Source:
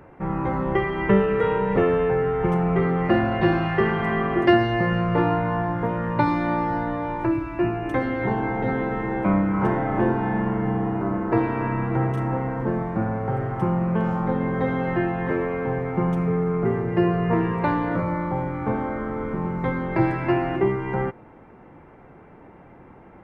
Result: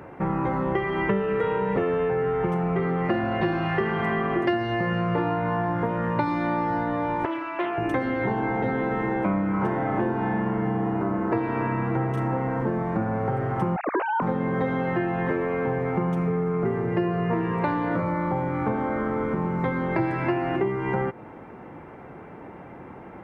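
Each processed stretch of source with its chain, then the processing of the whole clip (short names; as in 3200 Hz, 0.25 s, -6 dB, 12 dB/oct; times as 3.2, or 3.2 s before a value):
7.25–7.78 HPF 580 Hz + air absorption 100 m + Doppler distortion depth 0.18 ms
13.76–14.22 sine-wave speech + low shelf 380 Hz -10 dB
whole clip: HPF 98 Hz 6 dB/oct; compressor 4:1, threshold -29 dBFS; gain +6 dB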